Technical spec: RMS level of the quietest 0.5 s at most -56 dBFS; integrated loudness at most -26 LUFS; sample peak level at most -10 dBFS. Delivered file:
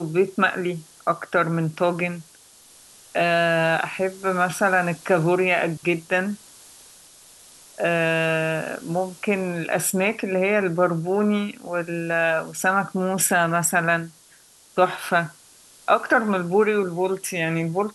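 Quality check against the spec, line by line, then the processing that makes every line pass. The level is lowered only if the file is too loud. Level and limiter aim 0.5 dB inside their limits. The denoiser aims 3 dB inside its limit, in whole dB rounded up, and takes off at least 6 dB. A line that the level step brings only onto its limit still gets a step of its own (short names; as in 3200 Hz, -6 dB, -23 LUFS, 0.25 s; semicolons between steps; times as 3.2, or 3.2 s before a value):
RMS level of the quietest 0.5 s -53 dBFS: fail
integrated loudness -22.5 LUFS: fail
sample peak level -6.0 dBFS: fail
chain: gain -4 dB; limiter -10.5 dBFS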